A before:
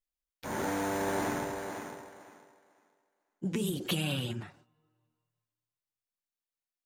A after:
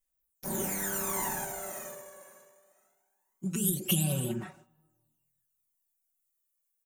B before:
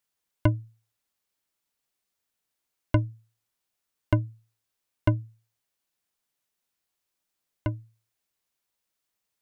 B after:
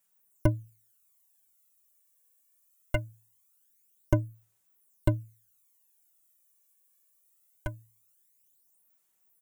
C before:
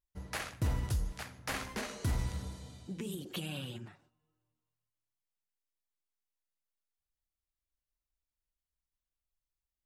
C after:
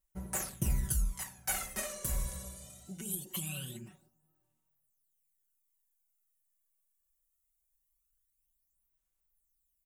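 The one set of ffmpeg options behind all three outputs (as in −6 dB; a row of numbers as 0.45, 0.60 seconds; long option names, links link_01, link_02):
-af "aexciter=amount=4.9:drive=6.1:freq=6600,aphaser=in_gain=1:out_gain=1:delay=1.8:decay=0.64:speed=0.22:type=sinusoidal,aecho=1:1:5.3:0.86,volume=-6.5dB"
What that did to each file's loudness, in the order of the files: +2.5, −3.5, +2.5 LU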